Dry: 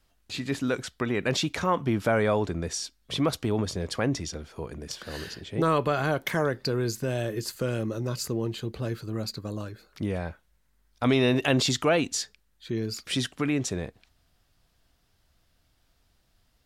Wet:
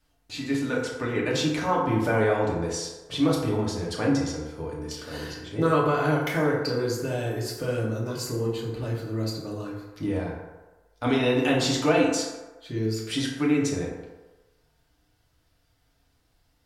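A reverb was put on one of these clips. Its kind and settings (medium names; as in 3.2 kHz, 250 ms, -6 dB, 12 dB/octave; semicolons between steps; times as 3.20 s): FDN reverb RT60 1.2 s, low-frequency decay 0.7×, high-frequency decay 0.45×, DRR -4.5 dB; trim -4.5 dB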